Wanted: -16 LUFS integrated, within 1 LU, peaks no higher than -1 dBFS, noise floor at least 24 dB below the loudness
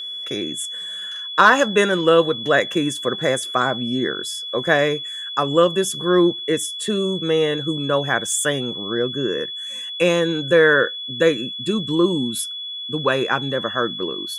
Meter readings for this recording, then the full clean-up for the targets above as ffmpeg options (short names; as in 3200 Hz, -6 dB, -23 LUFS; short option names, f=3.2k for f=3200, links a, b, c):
steady tone 3400 Hz; tone level -28 dBFS; loudness -20.0 LUFS; peak -2.0 dBFS; loudness target -16.0 LUFS
-> -af "bandreject=f=3.4k:w=30"
-af "volume=4dB,alimiter=limit=-1dB:level=0:latency=1"